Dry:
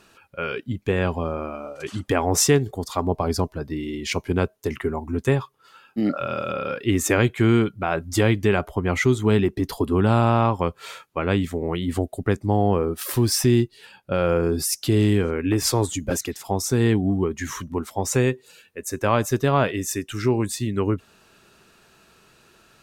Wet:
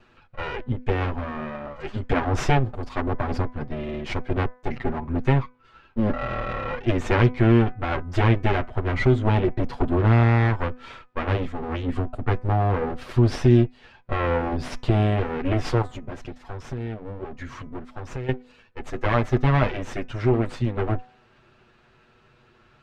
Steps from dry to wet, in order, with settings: comb filter that takes the minimum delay 8.2 ms; low-pass 2.7 kHz 12 dB/octave; bass shelf 110 Hz +9.5 dB; 15.82–18.29 s: compression 3:1, threshold -33 dBFS, peak gain reduction 14 dB; de-hum 250 Hz, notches 10

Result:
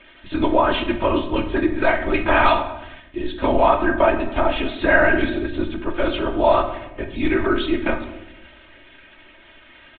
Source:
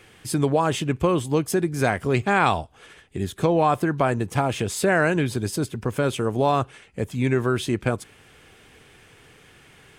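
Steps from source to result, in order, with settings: LPC vocoder at 8 kHz whisper; bass shelf 280 Hz -10.5 dB; comb 3.2 ms, depth 83%; simulated room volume 310 m³, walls mixed, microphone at 0.65 m; trim +3 dB

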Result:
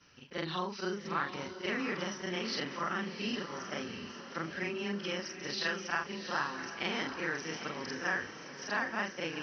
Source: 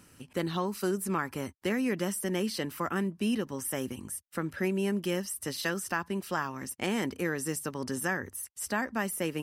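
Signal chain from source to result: short-time spectra conjugated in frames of 99 ms; Chebyshev low-pass 5.9 kHz, order 8; tilt shelf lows -5.5 dB, about 760 Hz; echo that smears into a reverb 741 ms, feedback 51%, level -9 dB

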